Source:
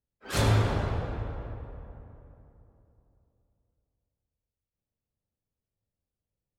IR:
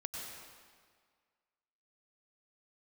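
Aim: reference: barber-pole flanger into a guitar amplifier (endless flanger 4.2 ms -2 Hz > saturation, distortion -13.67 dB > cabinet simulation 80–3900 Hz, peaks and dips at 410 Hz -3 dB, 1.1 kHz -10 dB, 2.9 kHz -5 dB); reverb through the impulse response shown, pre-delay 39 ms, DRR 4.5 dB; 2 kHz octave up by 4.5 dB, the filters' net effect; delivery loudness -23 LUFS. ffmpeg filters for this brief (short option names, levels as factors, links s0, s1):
-filter_complex "[0:a]equalizer=f=2000:t=o:g=7.5,asplit=2[s0][s1];[1:a]atrim=start_sample=2205,adelay=39[s2];[s1][s2]afir=irnorm=-1:irlink=0,volume=0.596[s3];[s0][s3]amix=inputs=2:normalize=0,asplit=2[s4][s5];[s5]adelay=4.2,afreqshift=-2[s6];[s4][s6]amix=inputs=2:normalize=1,asoftclip=threshold=0.0794,highpass=80,equalizer=f=410:t=q:w=4:g=-3,equalizer=f=1100:t=q:w=4:g=-10,equalizer=f=2900:t=q:w=4:g=-5,lowpass=f=3900:w=0.5412,lowpass=f=3900:w=1.3066,volume=3.76"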